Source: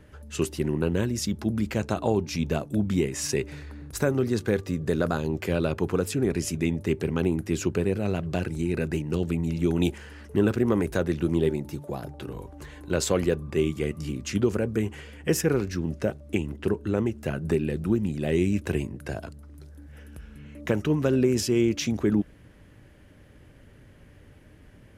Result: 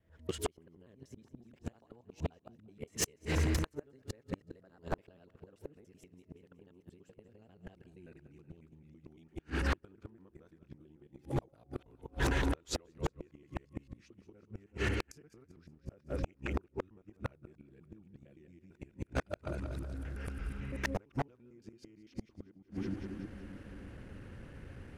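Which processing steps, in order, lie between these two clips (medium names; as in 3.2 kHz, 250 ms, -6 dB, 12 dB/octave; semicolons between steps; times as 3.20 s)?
time reversed locally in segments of 104 ms; Doppler pass-by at 8.08 s, 27 m/s, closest 5.9 m; recorder AGC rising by 51 dB/s; treble shelf 5.9 kHz -9 dB; two-band feedback delay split 310 Hz, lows 315 ms, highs 186 ms, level -13 dB; inverted gate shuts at -24 dBFS, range -37 dB; wavefolder -31.5 dBFS; dynamic bell 180 Hz, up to -5 dB, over -59 dBFS, Q 1.2; trim +9.5 dB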